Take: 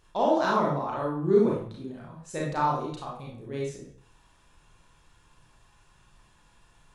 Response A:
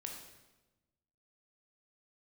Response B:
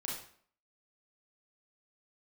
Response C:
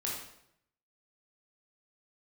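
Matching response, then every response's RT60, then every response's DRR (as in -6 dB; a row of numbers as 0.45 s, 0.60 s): B; 1.1 s, 0.55 s, 0.75 s; 1.0 dB, -4.0 dB, -4.5 dB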